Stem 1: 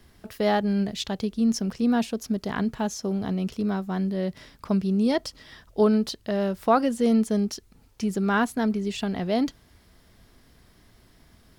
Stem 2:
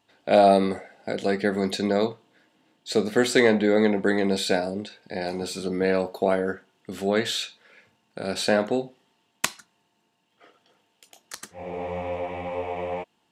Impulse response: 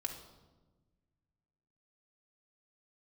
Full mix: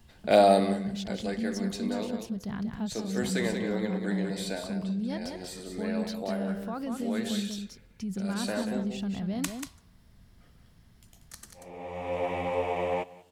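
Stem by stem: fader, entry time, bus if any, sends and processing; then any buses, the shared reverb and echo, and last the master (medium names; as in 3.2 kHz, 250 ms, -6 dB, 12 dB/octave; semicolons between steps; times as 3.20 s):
-9.0 dB, 0.00 s, no send, echo send -5.5 dB, resonant low shelf 250 Hz +7.5 dB, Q 1.5; peak limiter -19 dBFS, peak gain reduction 11.5 dB
0.0 dB, 0.00 s, send -17.5 dB, echo send -20 dB, treble shelf 6.8 kHz +10.5 dB; auto duck -19 dB, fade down 1.70 s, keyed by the first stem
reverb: on, RT60 1.3 s, pre-delay 3 ms
echo: delay 187 ms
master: none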